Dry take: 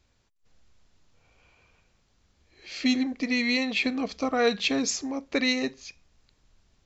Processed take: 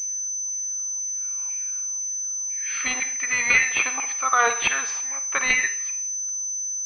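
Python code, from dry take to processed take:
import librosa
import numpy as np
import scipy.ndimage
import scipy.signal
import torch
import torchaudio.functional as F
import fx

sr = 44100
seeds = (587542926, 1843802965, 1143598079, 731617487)

p1 = fx.filter_lfo_highpass(x, sr, shape='saw_down', hz=2.0, low_hz=900.0, high_hz=2300.0, q=4.0)
p2 = fx.rev_schroeder(p1, sr, rt60_s=0.59, comb_ms=38, drr_db=9.5)
p3 = fx.rider(p2, sr, range_db=3, speed_s=0.5)
p4 = p2 + (p3 * librosa.db_to_amplitude(-2.5))
y = fx.pwm(p4, sr, carrier_hz=6100.0)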